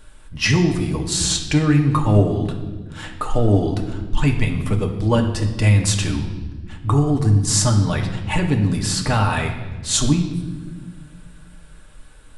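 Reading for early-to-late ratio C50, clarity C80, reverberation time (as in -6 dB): 8.0 dB, 10.0 dB, 1.3 s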